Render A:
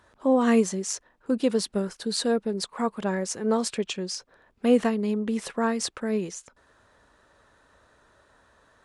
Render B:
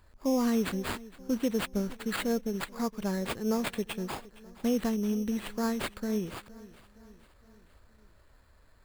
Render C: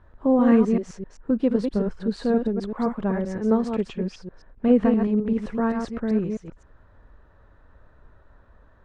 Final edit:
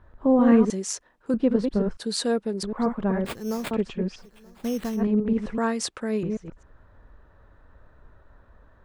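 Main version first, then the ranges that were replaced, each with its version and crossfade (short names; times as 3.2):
C
0.7–1.34 from A
1.97–2.63 from A
3.26–3.71 from B
4.22–4.99 from B, crossfade 0.10 s
5.58–6.23 from A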